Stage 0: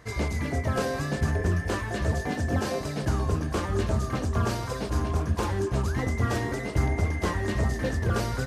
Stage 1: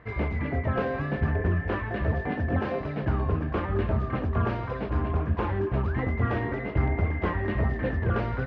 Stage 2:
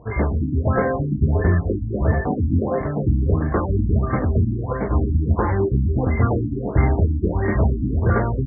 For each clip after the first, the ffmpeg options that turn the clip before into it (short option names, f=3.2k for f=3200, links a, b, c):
-af "lowpass=f=2.7k:w=0.5412,lowpass=f=2.7k:w=1.3066"
-af "afftfilt=real='re*lt(b*sr/1024,330*pow(2300/330,0.5+0.5*sin(2*PI*1.5*pts/sr)))':imag='im*lt(b*sr/1024,330*pow(2300/330,0.5+0.5*sin(2*PI*1.5*pts/sr)))':win_size=1024:overlap=0.75,volume=8dB"